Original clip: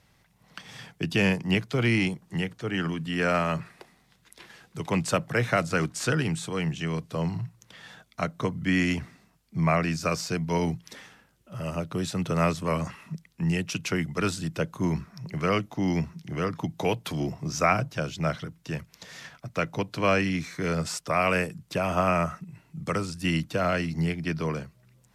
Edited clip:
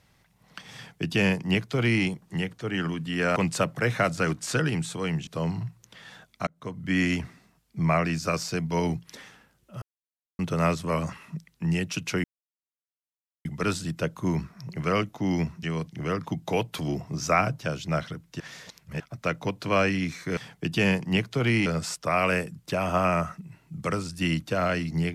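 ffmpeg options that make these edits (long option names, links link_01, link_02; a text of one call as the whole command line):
ffmpeg -i in.wav -filter_complex "[0:a]asplit=13[link_01][link_02][link_03][link_04][link_05][link_06][link_07][link_08][link_09][link_10][link_11][link_12][link_13];[link_01]atrim=end=3.362[link_14];[link_02]atrim=start=4.888:end=6.802[link_15];[link_03]atrim=start=7.048:end=8.25,asetpts=PTS-STARTPTS,afade=type=out:start_time=1.198:duration=0.004:curve=hsin[link_16];[link_04]atrim=start=8.25:end=11.6,asetpts=PTS-STARTPTS,afade=type=in:duration=0.52,afade=type=out:start_time=3.346:duration=0.004:curve=hsin[link_17];[link_05]atrim=start=11.6:end=12.17,asetpts=PTS-STARTPTS,volume=0[link_18];[link_06]atrim=start=12.17:end=14.02,asetpts=PTS-STARTPTS,afade=type=in:duration=0.004:curve=hsin,afade=type=out:start_time=1.846:duration=0.004:curve=hsin,apad=pad_dur=1.21[link_19];[link_07]atrim=start=14.02:end=16.202,asetpts=PTS-STARTPTS,afade=type=in:duration=0.004:curve=hsin[link_20];[link_08]atrim=start=6.798:end=7.052[link_21];[link_09]atrim=start=16.198:end=18.722[link_22];[link_10]atrim=start=18.718:end=19.322,asetpts=PTS-STARTPTS,areverse[link_23];[link_11]atrim=start=19.318:end=20.692[link_24];[link_12]atrim=start=0.748:end=2.042[link_25];[link_13]atrim=start=20.688[link_26];[link_14][link_15]acrossfade=duration=0.004:curve1=hsin:curve2=hsin[link_27];[link_16][link_17][link_18][link_19][link_20]concat=n=5:v=0:a=1[link_28];[link_27][link_28]acrossfade=duration=0.004:curve1=hsin:curve2=hsin[link_29];[link_29][link_21]acrossfade=duration=0.004:curve1=hsin:curve2=hsin[link_30];[link_30][link_22]acrossfade=duration=0.004:curve1=hsin:curve2=hsin[link_31];[link_31][link_23]acrossfade=duration=0.004:curve1=hsin:curve2=hsin[link_32];[link_32][link_24]acrossfade=duration=0.004:curve1=hsin:curve2=hsin[link_33];[link_33][link_25]acrossfade=duration=0.004:curve1=hsin:curve2=hsin[link_34];[link_34][link_26]acrossfade=duration=0.004:curve1=hsin:curve2=hsin" out.wav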